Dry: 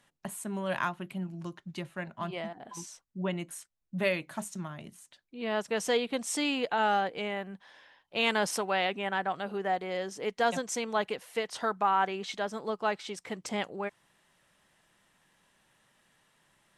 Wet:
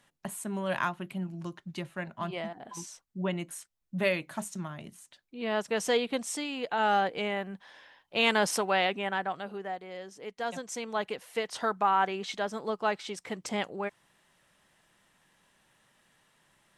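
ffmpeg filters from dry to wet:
ffmpeg -i in.wav -af "volume=19.5dB,afade=type=out:start_time=6.17:duration=0.31:silence=0.398107,afade=type=in:start_time=6.48:duration=0.54:silence=0.334965,afade=type=out:start_time=8.78:duration=1:silence=0.298538,afade=type=in:start_time=10.36:duration=1.18:silence=0.354813" out.wav

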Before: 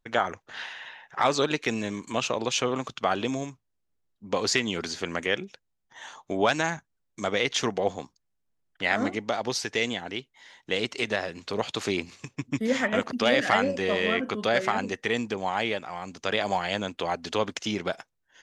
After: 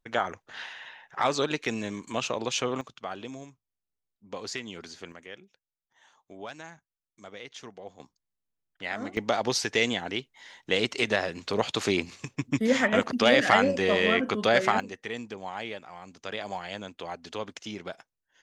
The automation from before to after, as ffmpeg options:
ffmpeg -i in.wav -af "asetnsamples=nb_out_samples=441:pad=0,asendcmd='2.81 volume volume -11dB;5.12 volume volume -17.5dB;8 volume volume -8.5dB;9.17 volume volume 2dB;14.8 volume volume -8.5dB',volume=-2.5dB" out.wav

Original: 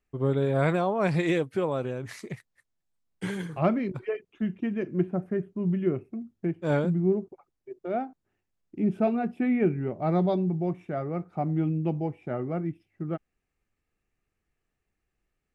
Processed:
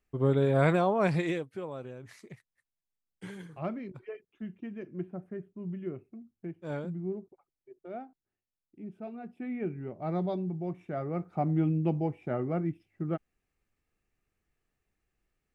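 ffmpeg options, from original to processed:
ffmpeg -i in.wav -af "volume=18dB,afade=type=out:start_time=0.96:duration=0.5:silence=0.281838,afade=type=out:start_time=7.89:duration=1.08:silence=0.421697,afade=type=in:start_time=8.97:duration=1.16:silence=0.266073,afade=type=in:start_time=10.64:duration=0.72:silence=0.473151" out.wav

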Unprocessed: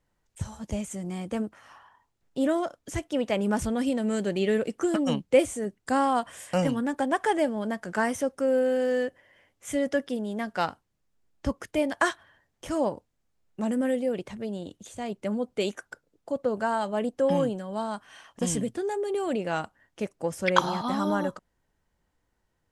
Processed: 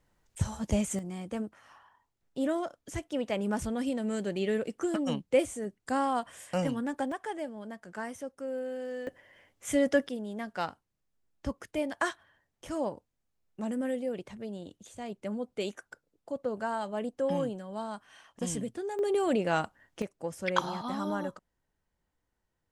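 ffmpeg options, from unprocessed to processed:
ffmpeg -i in.wav -af "asetnsamples=nb_out_samples=441:pad=0,asendcmd='0.99 volume volume -5dB;7.12 volume volume -12dB;9.07 volume volume 1dB;10.09 volume volume -6dB;18.99 volume volume 1dB;20.02 volume volume -6.5dB',volume=3.5dB" out.wav

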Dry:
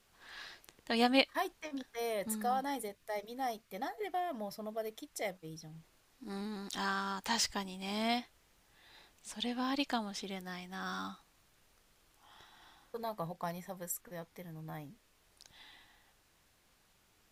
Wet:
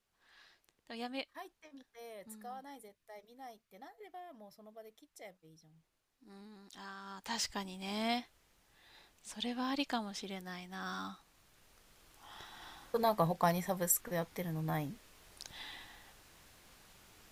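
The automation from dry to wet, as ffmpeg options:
ffmpeg -i in.wav -af "volume=9dB,afade=type=in:start_time=6.99:duration=0.66:silence=0.251189,afade=type=in:start_time=11.06:duration=1.91:silence=0.298538" out.wav

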